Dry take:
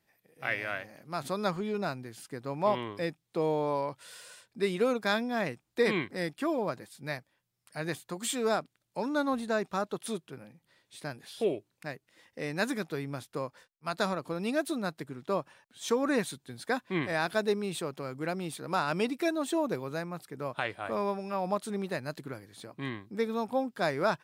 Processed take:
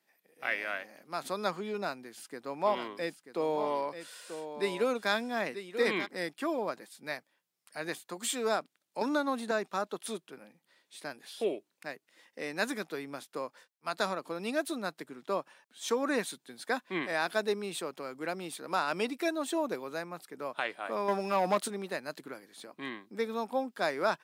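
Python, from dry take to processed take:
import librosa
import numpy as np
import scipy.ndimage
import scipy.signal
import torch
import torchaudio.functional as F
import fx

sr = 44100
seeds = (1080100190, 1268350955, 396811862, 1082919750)

y = fx.echo_single(x, sr, ms=937, db=-10.0, at=(2.66, 6.05), fade=0.02)
y = fx.band_squash(y, sr, depth_pct=100, at=(9.01, 9.51))
y = fx.leveller(y, sr, passes=2, at=(21.08, 21.68))
y = scipy.signal.sosfilt(scipy.signal.butter(4, 190.0, 'highpass', fs=sr, output='sos'), y)
y = fx.low_shelf(y, sr, hz=370.0, db=-5.5)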